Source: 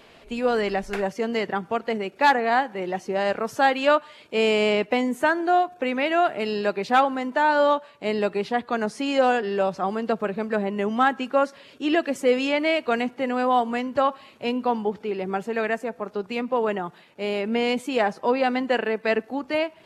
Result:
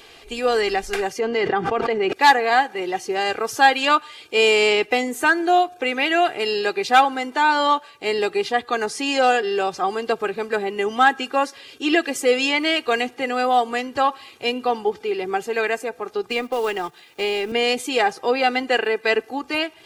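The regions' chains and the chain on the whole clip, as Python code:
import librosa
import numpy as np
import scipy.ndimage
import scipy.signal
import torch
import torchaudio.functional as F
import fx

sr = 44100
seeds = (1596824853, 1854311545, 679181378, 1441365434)

y = fx.chain(x, sr, fx.spacing_loss(db_at_10k=23),
    fx.env_flatten(amount_pct=100), at=(1.19, 2.13))
y = fx.chain(y, sr, fx.law_mismatch(coded='A'),
    fx.high_shelf(hz=8200.0, db=-3.5),
    fx.band_squash(depth_pct=70), at=(16.28, 17.52))
y = fx.high_shelf(y, sr, hz=2300.0, db=10.5)
y = y + 0.62 * np.pad(y, (int(2.5 * sr / 1000.0), 0))[:len(y)]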